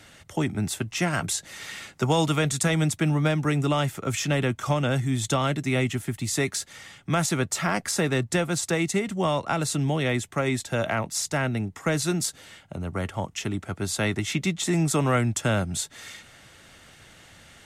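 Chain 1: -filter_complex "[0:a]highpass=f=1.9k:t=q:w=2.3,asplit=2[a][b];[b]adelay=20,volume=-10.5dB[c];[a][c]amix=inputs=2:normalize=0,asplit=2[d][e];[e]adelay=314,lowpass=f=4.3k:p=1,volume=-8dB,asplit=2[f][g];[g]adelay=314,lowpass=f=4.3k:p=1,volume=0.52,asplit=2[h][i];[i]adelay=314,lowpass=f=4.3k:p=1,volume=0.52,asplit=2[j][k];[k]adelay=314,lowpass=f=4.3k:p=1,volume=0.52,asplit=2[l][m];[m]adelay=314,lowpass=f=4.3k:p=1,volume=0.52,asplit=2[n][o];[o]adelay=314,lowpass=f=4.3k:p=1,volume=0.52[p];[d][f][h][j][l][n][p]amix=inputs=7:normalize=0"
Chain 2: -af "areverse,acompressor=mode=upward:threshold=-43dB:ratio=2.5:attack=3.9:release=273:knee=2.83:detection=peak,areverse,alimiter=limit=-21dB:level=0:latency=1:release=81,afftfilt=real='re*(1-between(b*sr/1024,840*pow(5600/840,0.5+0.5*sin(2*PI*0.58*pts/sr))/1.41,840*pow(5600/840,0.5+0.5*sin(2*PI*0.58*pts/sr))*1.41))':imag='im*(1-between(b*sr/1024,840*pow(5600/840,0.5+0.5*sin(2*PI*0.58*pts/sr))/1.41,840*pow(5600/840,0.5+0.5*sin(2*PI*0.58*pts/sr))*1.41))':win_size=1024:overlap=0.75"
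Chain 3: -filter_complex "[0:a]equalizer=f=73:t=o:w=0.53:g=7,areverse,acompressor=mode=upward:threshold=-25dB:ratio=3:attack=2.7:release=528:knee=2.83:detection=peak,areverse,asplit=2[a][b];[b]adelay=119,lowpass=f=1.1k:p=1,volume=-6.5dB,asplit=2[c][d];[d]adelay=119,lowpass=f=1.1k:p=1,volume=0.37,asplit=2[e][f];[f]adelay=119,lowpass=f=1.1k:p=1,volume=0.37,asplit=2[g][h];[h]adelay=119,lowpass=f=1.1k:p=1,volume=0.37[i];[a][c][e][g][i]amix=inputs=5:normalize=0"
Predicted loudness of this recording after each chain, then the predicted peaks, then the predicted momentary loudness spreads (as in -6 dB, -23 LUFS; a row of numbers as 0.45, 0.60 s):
-27.0, -31.0, -25.5 LUFS; -9.0, -19.5, -11.0 dBFS; 11, 12, 12 LU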